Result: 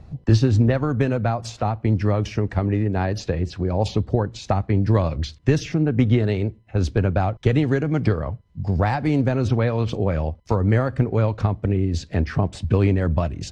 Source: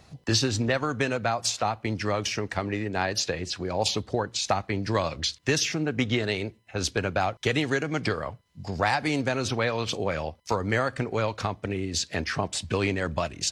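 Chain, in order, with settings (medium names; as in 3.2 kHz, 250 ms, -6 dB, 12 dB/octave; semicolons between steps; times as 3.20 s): tilt EQ -4 dB/octave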